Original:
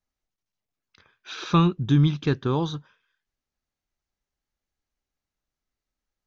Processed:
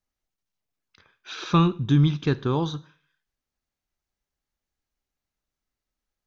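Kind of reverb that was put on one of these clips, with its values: Schroeder reverb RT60 0.46 s, combs from 33 ms, DRR 18 dB

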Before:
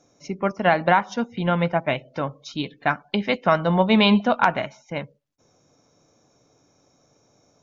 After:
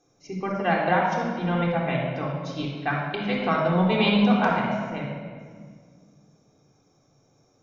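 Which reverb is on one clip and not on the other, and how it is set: shoebox room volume 2900 m³, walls mixed, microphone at 3.7 m; gain -8.5 dB

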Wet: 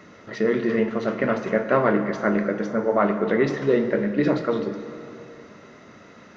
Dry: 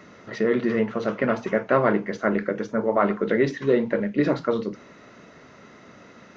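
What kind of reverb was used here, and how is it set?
plate-style reverb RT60 2.9 s, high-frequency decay 0.75×, DRR 7.5 dB

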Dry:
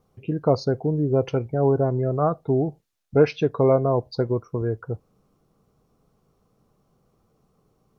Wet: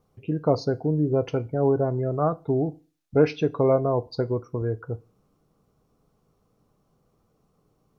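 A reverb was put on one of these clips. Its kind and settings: FDN reverb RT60 0.35 s, low-frequency decay 1.1×, high-frequency decay 1×, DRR 15.5 dB; gain -2 dB

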